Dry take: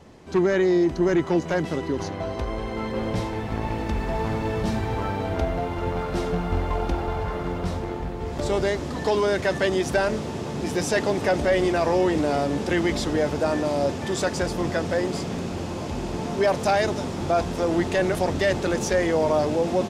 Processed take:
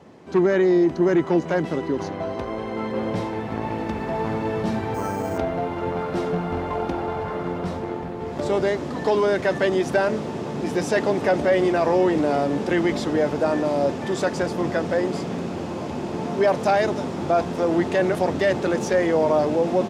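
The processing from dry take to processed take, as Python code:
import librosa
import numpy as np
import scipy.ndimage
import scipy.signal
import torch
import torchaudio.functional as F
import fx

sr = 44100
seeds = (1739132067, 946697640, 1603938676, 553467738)

y = fx.resample_bad(x, sr, factor=6, down='filtered', up='hold', at=(4.94, 5.38))
y = scipy.signal.sosfilt(scipy.signal.butter(2, 140.0, 'highpass', fs=sr, output='sos'), y)
y = fx.high_shelf(y, sr, hz=3000.0, db=-8.5)
y = F.gain(torch.from_numpy(y), 2.5).numpy()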